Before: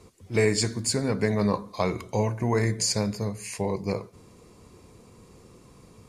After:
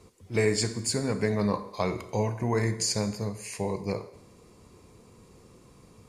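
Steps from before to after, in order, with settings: on a send: high-pass 310 Hz 24 dB/octave + reverberation RT60 0.90 s, pre-delay 29 ms, DRR 12 dB; on the sum: trim -2.5 dB

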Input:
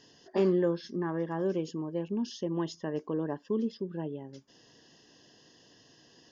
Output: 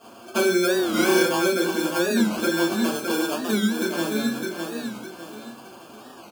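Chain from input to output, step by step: feedback delay 607 ms, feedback 35%, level -7.5 dB; compression 6:1, threshold -33 dBFS, peak gain reduction 11.5 dB; sample-and-hold 23×; high-pass 470 Hz 6 dB/octave; band-stop 2.2 kHz, Q 8.4; 0.71–1.22 s: flutter echo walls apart 5.5 m, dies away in 1.3 s; reverberation RT60 0.40 s, pre-delay 4 ms, DRR -8.5 dB; warped record 45 rpm, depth 160 cents; trim +7 dB

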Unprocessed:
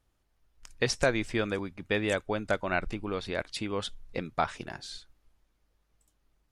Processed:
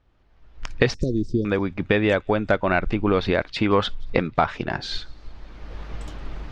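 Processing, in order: recorder AGC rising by 22 dB/s; 0.94–1.45 s: inverse Chebyshev band-stop 890–2300 Hz, stop band 60 dB; 3.55–4.31 s: dynamic bell 1.2 kHz, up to +5 dB, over -45 dBFS, Q 0.97; in parallel at -9 dB: hard clipper -21.5 dBFS, distortion -13 dB; on the sum: distance through air 220 m; on a send: feedback echo behind a high-pass 175 ms, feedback 59%, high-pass 5.3 kHz, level -22 dB; on the sum: trim +6.5 dB

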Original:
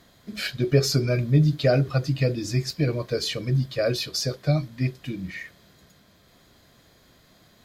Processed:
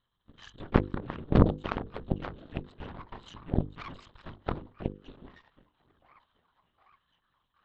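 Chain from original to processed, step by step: comb filter that takes the minimum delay 1 ms; tilt shelf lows +3.5 dB, about 1.3 kHz; static phaser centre 2.2 kHz, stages 6; repeats whose band climbs or falls 768 ms, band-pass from 340 Hz, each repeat 0.7 oct, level -6 dB; LPC vocoder at 8 kHz whisper; Chebyshev shaper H 3 -9 dB, 6 -13 dB, 8 -15 dB, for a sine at -5 dBFS; hum notches 50/100/150/200/250/300/350/400/450/500 Hz; tape noise reduction on one side only encoder only

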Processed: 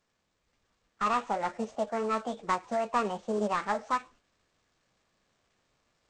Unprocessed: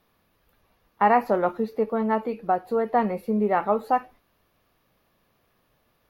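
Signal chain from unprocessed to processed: CVSD coder 32 kbps; formant shift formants +6 st; gain riding 2 s; trim -6.5 dB

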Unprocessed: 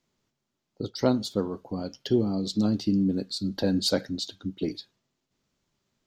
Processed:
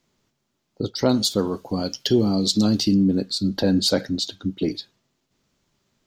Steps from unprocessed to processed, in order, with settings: 1.09–2.94 s: treble shelf 2.8 kHz +11.5 dB; in parallel at 0 dB: peak limiter -20 dBFS, peak gain reduction 11.5 dB; on the sum: trim +1 dB

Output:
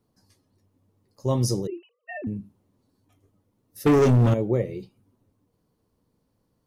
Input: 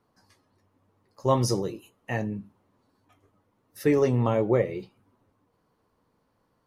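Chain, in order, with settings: 1.67–2.27 s: formants replaced by sine waves; peaking EQ 1.3 kHz -13 dB 2.7 oct; 3.86–4.34 s: waveshaping leveller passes 3; trim +3.5 dB

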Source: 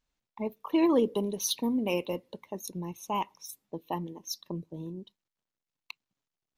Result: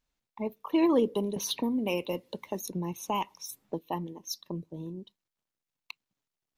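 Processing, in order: 1.36–3.79 s: three bands compressed up and down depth 70%

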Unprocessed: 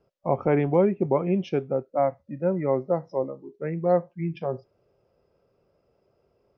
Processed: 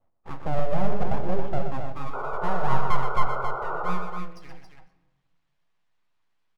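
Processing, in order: companding laws mixed up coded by mu; de-hum 69.54 Hz, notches 33; spectral noise reduction 12 dB; in parallel at +2 dB: peak limiter -21 dBFS, peak gain reduction 11.5 dB; on the sum: compression 1.5:1, threshold -26 dBFS, peak gain reduction 5 dB; touch-sensitive flanger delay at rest 11 ms, full sweep at -24 dBFS; band-pass sweep 270 Hz -> 2 kHz, 1.99–5.12 s; full-wave rectifier; painted sound noise, 2.13–3.92 s, 360–1500 Hz -37 dBFS; loudspeakers at several distances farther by 42 m -8 dB, 94 m -6 dB; on a send at -12 dB: reverberation RT60 1.1 s, pre-delay 10 ms; on the sum: trim +4 dB

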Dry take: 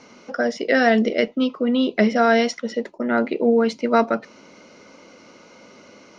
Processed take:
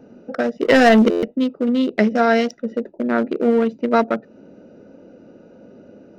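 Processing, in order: local Wiener filter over 41 samples; 0.62–1.22 s: waveshaping leveller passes 2; in parallel at +1.5 dB: compression, threshold -31 dBFS, peak gain reduction 19 dB; on the sum: buffer glitch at 1.10 s, samples 512, times 10

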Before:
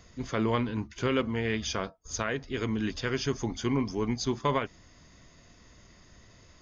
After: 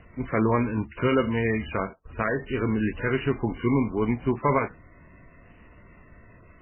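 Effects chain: trim +5.5 dB; MP3 8 kbps 8 kHz

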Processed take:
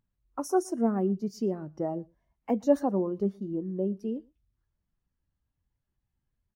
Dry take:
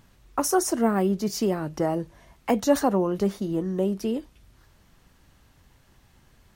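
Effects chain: on a send: delay 118 ms -19 dB; on the sum: spectral contrast expander 1.5:1; trim -2.5 dB

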